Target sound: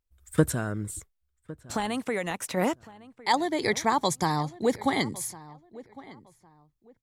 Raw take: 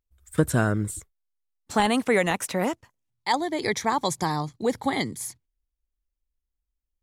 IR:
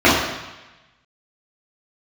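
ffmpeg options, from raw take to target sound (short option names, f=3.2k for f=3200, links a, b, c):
-filter_complex "[0:a]asplit=3[a][b][c];[a]afade=t=out:st=0.52:d=0.02[d];[b]acompressor=threshold=-30dB:ratio=2.5,afade=t=in:st=0.52:d=0.02,afade=t=out:st=2.56:d=0.02[e];[c]afade=t=in:st=2.56:d=0.02[f];[d][e][f]amix=inputs=3:normalize=0,asplit=2[g][h];[h]adelay=1107,lowpass=f=2.1k:p=1,volume=-19dB,asplit=2[i][j];[j]adelay=1107,lowpass=f=2.1k:p=1,volume=0.26[k];[g][i][k]amix=inputs=3:normalize=0"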